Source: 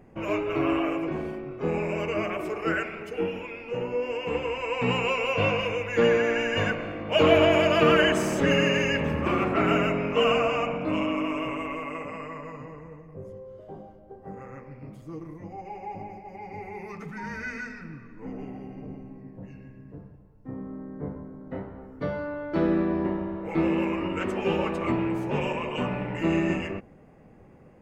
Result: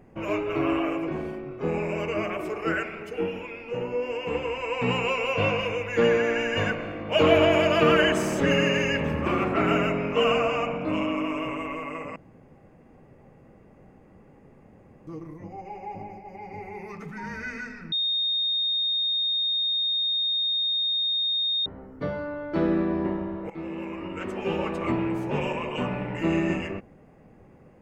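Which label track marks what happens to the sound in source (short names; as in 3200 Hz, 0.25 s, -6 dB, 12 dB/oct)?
12.160000	15.070000	room tone
17.920000	21.660000	bleep 3690 Hz -22.5 dBFS
23.500000	24.900000	fade in, from -14 dB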